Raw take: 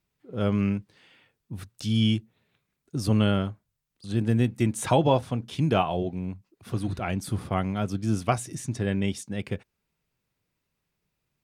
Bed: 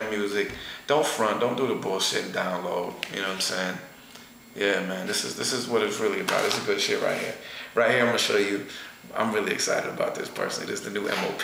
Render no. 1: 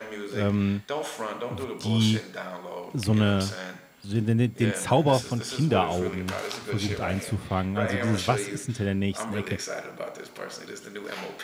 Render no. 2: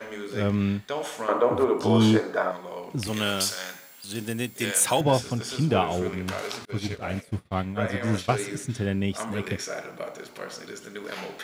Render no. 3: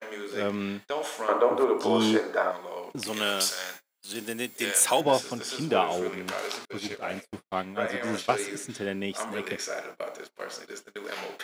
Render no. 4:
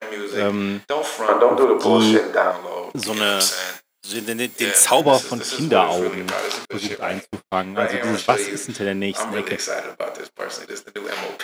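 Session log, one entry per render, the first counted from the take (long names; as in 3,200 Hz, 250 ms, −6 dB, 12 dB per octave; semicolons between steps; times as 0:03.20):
mix in bed −8.5 dB
0:01.28–0:02.52: drawn EQ curve 190 Hz 0 dB, 320 Hz +13 dB, 1,300 Hz +11 dB, 2,600 Hz −2 dB; 0:03.07–0:05.01: RIAA equalisation recording; 0:06.65–0:08.39: downward expander −25 dBFS
high-pass filter 300 Hz 12 dB per octave; noise gate −41 dBFS, range −33 dB
level +8.5 dB; brickwall limiter −1 dBFS, peak gain reduction 1.5 dB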